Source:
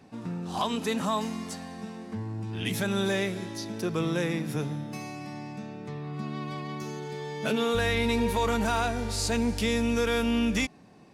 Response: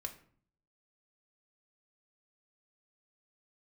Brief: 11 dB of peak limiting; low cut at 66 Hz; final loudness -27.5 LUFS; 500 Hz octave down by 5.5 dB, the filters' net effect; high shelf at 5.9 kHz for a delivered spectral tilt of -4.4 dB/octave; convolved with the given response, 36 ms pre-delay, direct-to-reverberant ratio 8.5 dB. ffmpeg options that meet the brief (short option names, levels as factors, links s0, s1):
-filter_complex "[0:a]highpass=66,equalizer=f=500:t=o:g=-6.5,highshelf=f=5900:g=6,alimiter=level_in=1.12:limit=0.0631:level=0:latency=1,volume=0.891,asplit=2[s0][s1];[1:a]atrim=start_sample=2205,adelay=36[s2];[s1][s2]afir=irnorm=-1:irlink=0,volume=0.473[s3];[s0][s3]amix=inputs=2:normalize=0,volume=2.37"